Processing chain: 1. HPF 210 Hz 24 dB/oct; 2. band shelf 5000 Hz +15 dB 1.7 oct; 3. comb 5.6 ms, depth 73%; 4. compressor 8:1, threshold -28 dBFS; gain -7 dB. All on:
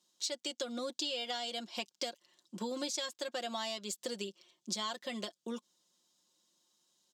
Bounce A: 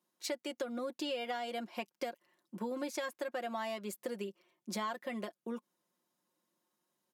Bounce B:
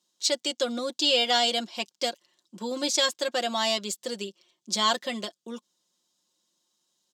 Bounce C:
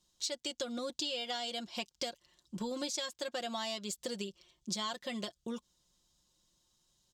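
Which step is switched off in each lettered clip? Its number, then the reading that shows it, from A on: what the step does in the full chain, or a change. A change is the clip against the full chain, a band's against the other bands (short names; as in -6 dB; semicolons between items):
2, 4 kHz band -10.0 dB; 4, mean gain reduction 9.5 dB; 1, 125 Hz band +4.0 dB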